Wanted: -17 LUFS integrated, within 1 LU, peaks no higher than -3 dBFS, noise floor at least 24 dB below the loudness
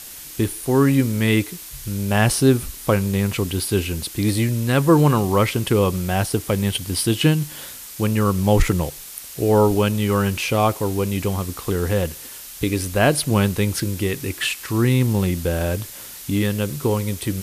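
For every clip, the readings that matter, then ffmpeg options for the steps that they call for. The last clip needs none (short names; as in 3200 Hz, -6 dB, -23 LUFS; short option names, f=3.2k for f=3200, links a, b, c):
noise floor -37 dBFS; noise floor target -45 dBFS; loudness -20.5 LUFS; peak -4.0 dBFS; loudness target -17.0 LUFS
-> -af "afftdn=nr=8:nf=-37"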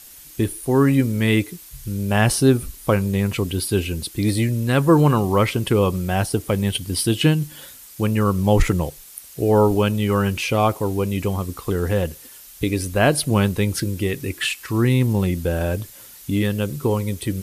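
noise floor -43 dBFS; noise floor target -45 dBFS
-> -af "afftdn=nr=6:nf=-43"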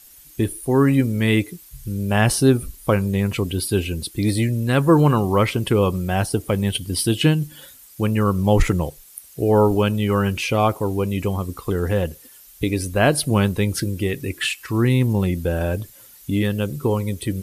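noise floor -47 dBFS; loudness -20.5 LUFS; peak -4.0 dBFS; loudness target -17.0 LUFS
-> -af "volume=3.5dB,alimiter=limit=-3dB:level=0:latency=1"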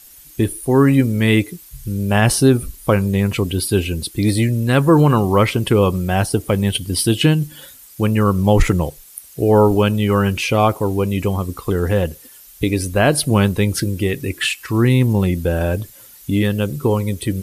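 loudness -17.5 LUFS; peak -3.0 dBFS; noise floor -43 dBFS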